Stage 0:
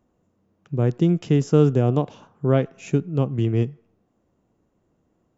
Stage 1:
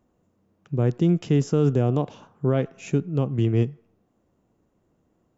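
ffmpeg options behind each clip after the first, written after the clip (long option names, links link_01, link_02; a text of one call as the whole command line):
ffmpeg -i in.wav -af "alimiter=limit=-11dB:level=0:latency=1" out.wav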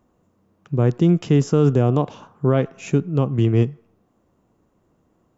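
ffmpeg -i in.wav -af "equalizer=frequency=1100:width=2.2:gain=4,volume=4dB" out.wav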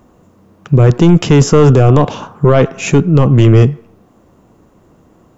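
ffmpeg -i in.wav -af "aeval=exprs='0.501*(cos(1*acos(clip(val(0)/0.501,-1,1)))-cos(1*PI/2))+0.00891*(cos(6*acos(clip(val(0)/0.501,-1,1)))-cos(6*PI/2))':channel_layout=same,apsyclip=18dB,volume=-2dB" out.wav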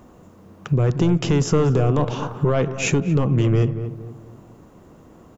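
ffmpeg -i in.wav -filter_complex "[0:a]acompressor=threshold=-20dB:ratio=3,asplit=2[link_01][link_02];[link_02]adelay=231,lowpass=frequency=1100:poles=1,volume=-10dB,asplit=2[link_03][link_04];[link_04]adelay=231,lowpass=frequency=1100:poles=1,volume=0.39,asplit=2[link_05][link_06];[link_06]adelay=231,lowpass=frequency=1100:poles=1,volume=0.39,asplit=2[link_07][link_08];[link_08]adelay=231,lowpass=frequency=1100:poles=1,volume=0.39[link_09];[link_03][link_05][link_07][link_09]amix=inputs=4:normalize=0[link_10];[link_01][link_10]amix=inputs=2:normalize=0" out.wav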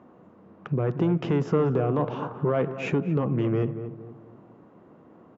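ffmpeg -i in.wav -af "highpass=160,lowpass=2000,volume=-3.5dB" out.wav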